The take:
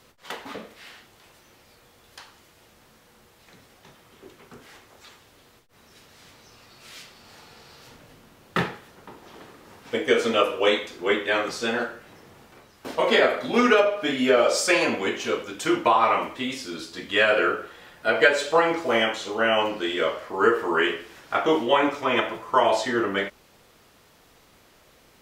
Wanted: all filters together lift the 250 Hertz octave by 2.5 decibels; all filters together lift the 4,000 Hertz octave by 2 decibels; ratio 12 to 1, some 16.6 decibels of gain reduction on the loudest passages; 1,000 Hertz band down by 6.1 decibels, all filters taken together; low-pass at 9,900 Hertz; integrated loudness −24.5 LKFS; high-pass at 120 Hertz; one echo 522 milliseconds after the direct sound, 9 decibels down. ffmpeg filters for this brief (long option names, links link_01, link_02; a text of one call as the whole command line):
ffmpeg -i in.wav -af "highpass=120,lowpass=9900,equalizer=frequency=250:width_type=o:gain=4,equalizer=frequency=1000:width_type=o:gain=-8.5,equalizer=frequency=4000:width_type=o:gain=3.5,acompressor=threshold=-31dB:ratio=12,aecho=1:1:522:0.355,volume=11.5dB" out.wav